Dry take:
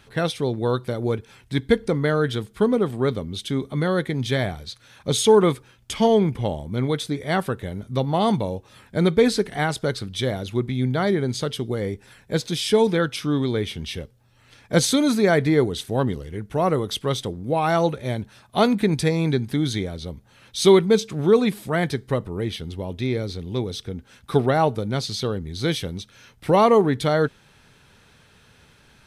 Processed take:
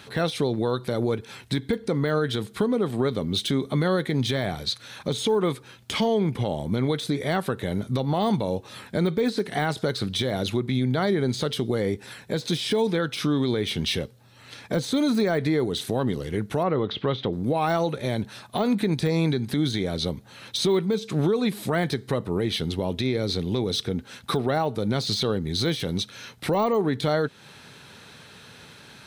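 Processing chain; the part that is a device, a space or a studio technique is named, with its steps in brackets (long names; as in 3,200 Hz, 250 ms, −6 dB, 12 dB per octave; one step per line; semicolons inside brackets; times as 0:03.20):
broadcast voice chain (high-pass filter 120 Hz 12 dB per octave; de-essing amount 80%; downward compressor 4 to 1, threshold −27 dBFS, peak gain reduction 14 dB; parametric band 4,000 Hz +5.5 dB 0.23 octaves; brickwall limiter −22 dBFS, peak gain reduction 7 dB)
0:16.63–0:17.33: low-pass filter 3,600 Hz 24 dB per octave
level +7.5 dB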